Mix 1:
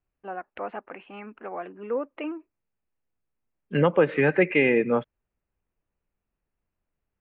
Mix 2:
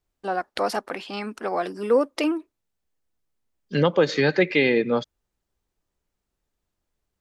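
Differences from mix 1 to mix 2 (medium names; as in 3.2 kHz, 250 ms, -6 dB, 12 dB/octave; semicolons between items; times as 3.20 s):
first voice +8.5 dB; master: remove elliptic low-pass 2.7 kHz, stop band 50 dB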